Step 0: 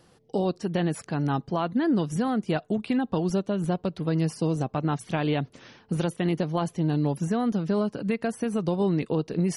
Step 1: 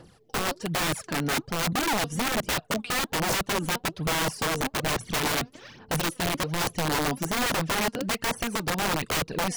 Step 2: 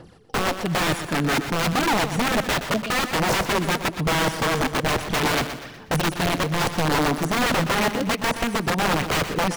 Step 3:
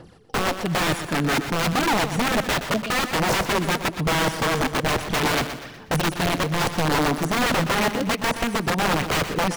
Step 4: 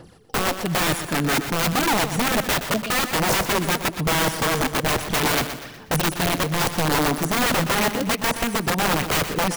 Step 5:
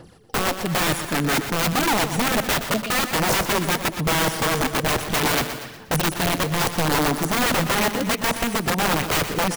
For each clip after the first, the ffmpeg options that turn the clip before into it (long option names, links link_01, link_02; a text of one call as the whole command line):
ffmpeg -i in.wav -af "aphaser=in_gain=1:out_gain=1:delay=4.3:decay=0.69:speed=1.2:type=sinusoidal,aeval=exprs='(mod(11.2*val(0)+1,2)-1)/11.2':channel_layout=same" out.wav
ffmpeg -i in.wav -filter_complex "[0:a]highshelf=frequency=5100:gain=-8,asplit=2[link_01][link_02];[link_02]aecho=0:1:122|244|366|488:0.316|0.133|0.0558|0.0234[link_03];[link_01][link_03]amix=inputs=2:normalize=0,volume=5.5dB" out.wav
ffmpeg -i in.wav -af anull out.wav
ffmpeg -i in.wav -af "highshelf=frequency=8700:gain=10.5" out.wav
ffmpeg -i in.wav -af "aecho=1:1:235:0.15" out.wav